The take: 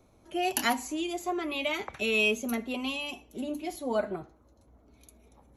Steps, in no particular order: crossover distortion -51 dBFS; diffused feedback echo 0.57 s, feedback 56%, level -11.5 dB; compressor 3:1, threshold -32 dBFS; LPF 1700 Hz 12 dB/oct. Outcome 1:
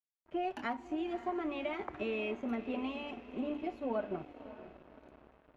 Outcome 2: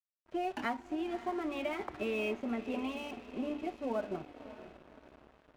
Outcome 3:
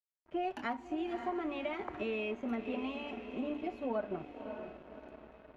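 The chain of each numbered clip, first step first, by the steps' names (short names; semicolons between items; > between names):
compressor > diffused feedback echo > crossover distortion > LPF; LPF > compressor > diffused feedback echo > crossover distortion; diffused feedback echo > compressor > crossover distortion > LPF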